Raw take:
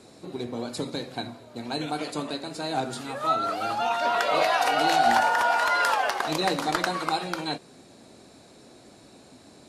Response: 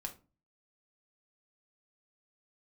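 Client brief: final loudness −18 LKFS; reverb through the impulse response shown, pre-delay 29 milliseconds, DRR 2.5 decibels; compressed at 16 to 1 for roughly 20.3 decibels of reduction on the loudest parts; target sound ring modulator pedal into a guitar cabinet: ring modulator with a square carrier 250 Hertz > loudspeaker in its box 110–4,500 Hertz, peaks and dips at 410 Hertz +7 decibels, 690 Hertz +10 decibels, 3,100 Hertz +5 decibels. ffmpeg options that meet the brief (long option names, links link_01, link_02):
-filter_complex "[0:a]acompressor=threshold=-38dB:ratio=16,asplit=2[link_01][link_02];[1:a]atrim=start_sample=2205,adelay=29[link_03];[link_02][link_03]afir=irnorm=-1:irlink=0,volume=-1dB[link_04];[link_01][link_04]amix=inputs=2:normalize=0,aeval=exprs='val(0)*sgn(sin(2*PI*250*n/s))':channel_layout=same,highpass=110,equalizer=frequency=410:width_type=q:width=4:gain=7,equalizer=frequency=690:width_type=q:width=4:gain=10,equalizer=frequency=3100:width_type=q:width=4:gain=5,lowpass=frequency=4500:width=0.5412,lowpass=frequency=4500:width=1.3066,volume=20dB"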